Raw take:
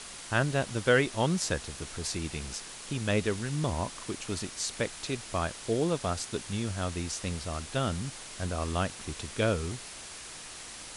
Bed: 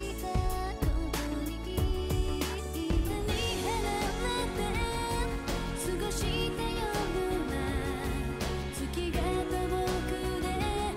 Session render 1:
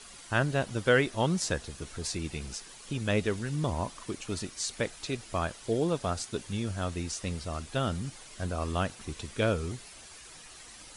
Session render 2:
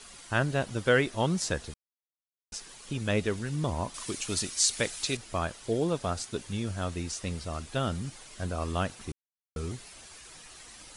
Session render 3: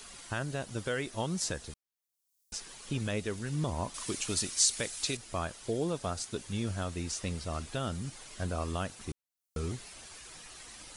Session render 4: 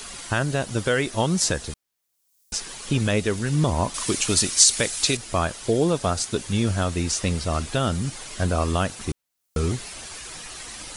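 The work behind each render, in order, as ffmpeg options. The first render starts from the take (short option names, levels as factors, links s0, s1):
-af "afftdn=nr=9:nf=-45"
-filter_complex "[0:a]asettb=1/sr,asplit=3[s0][s1][s2];[s0]atrim=end=3.944[s3];[s1]atrim=start=3.94:end=5.17,asetpts=PTS-STARTPTS,afade=t=in:d=0.004:c=qsin,afade=t=out:st=1.226:d=0.004:c=qsin,highshelf=f=2600:g=11[s4];[s2]atrim=start=5.166[s5];[s3][s4]acrossfade=d=0.004:c1=hsin:c2=qsin[s6];[s6][s5]acrossfade=d=0.004:c1=qsin:c2=hsin,asplit=5[s7][s8][s9][s10][s11];[s7]atrim=end=1.74,asetpts=PTS-STARTPTS,afade=t=out:st=1.736:d=0.004:c=hsin[s12];[s8]atrim=start=1.74:end=2.52,asetpts=PTS-STARTPTS,volume=0[s13];[s9]atrim=start=2.52:end=9.12,asetpts=PTS-STARTPTS,afade=t=in:d=0.004:c=hsin,afade=t=out:st=6.596:d=0.004:c=hsin[s14];[s10]atrim=start=9.12:end=9.56,asetpts=PTS-STARTPTS,volume=0[s15];[s11]atrim=start=9.56,asetpts=PTS-STARTPTS,afade=t=in:d=0.004:c=hsin[s16];[s12][s13][s14][s15][s16]concat=n=5:v=0:a=1"
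-filter_complex "[0:a]acrossover=split=5000[s0][s1];[s0]alimiter=limit=0.0708:level=0:latency=1:release=373[s2];[s1]acompressor=mode=upward:threshold=0.00178:ratio=2.5[s3];[s2][s3]amix=inputs=2:normalize=0"
-af "volume=3.76,alimiter=limit=0.891:level=0:latency=1"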